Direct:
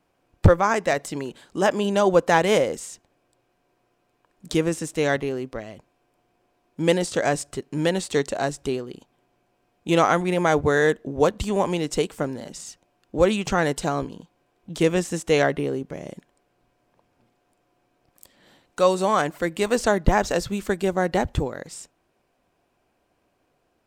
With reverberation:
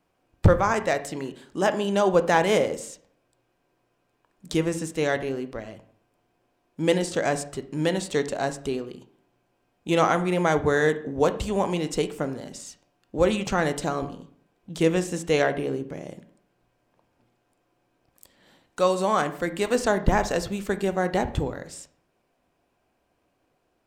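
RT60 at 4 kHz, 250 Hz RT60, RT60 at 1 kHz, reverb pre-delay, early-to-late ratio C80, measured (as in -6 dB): 0.40 s, 0.65 s, 0.55 s, 12 ms, 17.5 dB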